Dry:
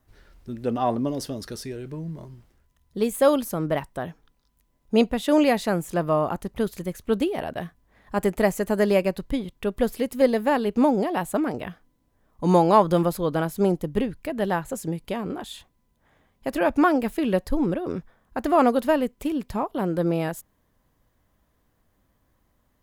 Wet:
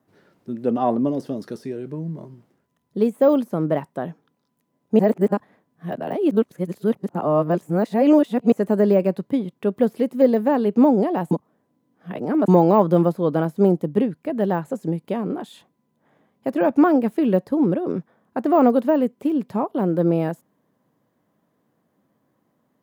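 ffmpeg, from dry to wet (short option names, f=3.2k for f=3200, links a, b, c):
-filter_complex "[0:a]asplit=5[a][b][c][d][e];[a]atrim=end=4.992[f];[b]atrim=start=4.988:end=8.522,asetpts=PTS-STARTPTS,areverse[g];[c]atrim=start=8.518:end=11.312[h];[d]atrim=start=11.308:end=12.482,asetpts=PTS-STARTPTS,areverse[i];[e]atrim=start=12.478[j];[f][g]acrossfade=d=0.004:c1=hsin:c2=hsin[k];[k][h]acrossfade=d=0.004:c1=hsin:c2=hsin[l];[l][i]acrossfade=d=0.004:c1=hsin:c2=hsin[m];[m][j]acrossfade=d=0.004:c1=hsin:c2=hsin,deesser=0.9,highpass=f=150:w=0.5412,highpass=f=150:w=1.3066,tiltshelf=f=1.2k:g=6"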